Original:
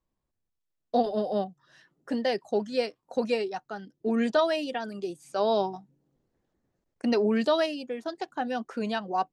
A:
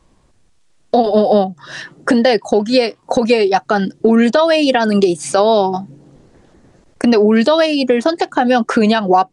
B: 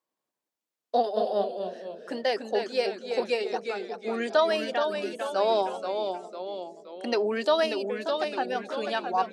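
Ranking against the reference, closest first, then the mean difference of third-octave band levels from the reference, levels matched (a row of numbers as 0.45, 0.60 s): A, B; 3.5, 7.0 dB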